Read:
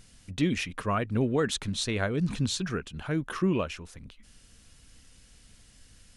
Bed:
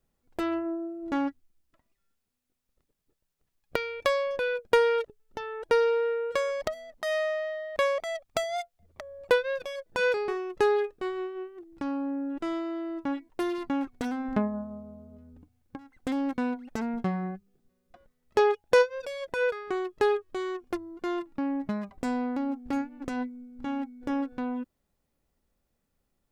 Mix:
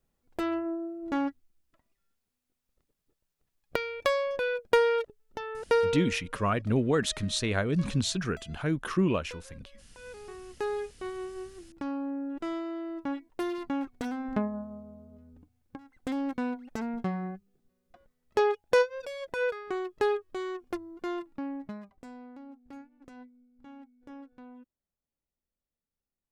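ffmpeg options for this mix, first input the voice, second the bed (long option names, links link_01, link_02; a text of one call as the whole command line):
ffmpeg -i stem1.wav -i stem2.wav -filter_complex "[0:a]adelay=5550,volume=0.5dB[link_01];[1:a]volume=20dB,afade=type=out:start_time=5.78:duration=0.44:silence=0.0749894,afade=type=in:start_time=10.03:duration=1.44:silence=0.0891251,afade=type=out:start_time=21.03:duration=1.04:silence=0.188365[link_02];[link_01][link_02]amix=inputs=2:normalize=0" out.wav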